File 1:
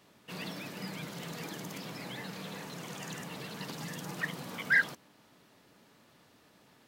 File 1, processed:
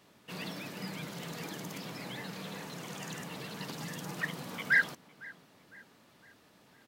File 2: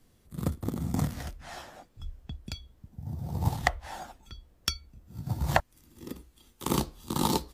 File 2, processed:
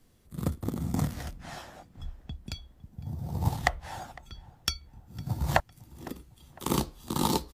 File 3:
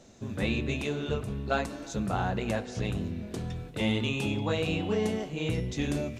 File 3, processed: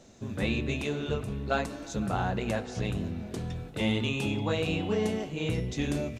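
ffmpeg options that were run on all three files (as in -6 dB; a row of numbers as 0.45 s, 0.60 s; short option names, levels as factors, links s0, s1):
-filter_complex "[0:a]asplit=2[s0][s1];[s1]adelay=506,lowpass=f=2900:p=1,volume=0.0891,asplit=2[s2][s3];[s3]adelay=506,lowpass=f=2900:p=1,volume=0.52,asplit=2[s4][s5];[s5]adelay=506,lowpass=f=2900:p=1,volume=0.52,asplit=2[s6][s7];[s7]adelay=506,lowpass=f=2900:p=1,volume=0.52[s8];[s0][s2][s4][s6][s8]amix=inputs=5:normalize=0"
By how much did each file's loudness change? 0.0 LU, -0.5 LU, 0.0 LU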